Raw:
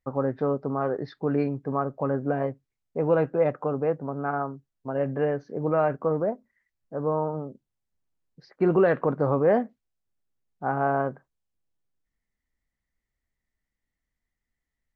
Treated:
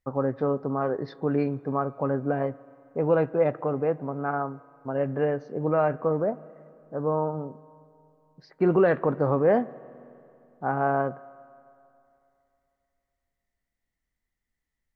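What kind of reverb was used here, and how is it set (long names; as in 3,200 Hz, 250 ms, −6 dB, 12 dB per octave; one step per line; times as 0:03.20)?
spring reverb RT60 2.8 s, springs 33/45 ms, chirp 40 ms, DRR 19.5 dB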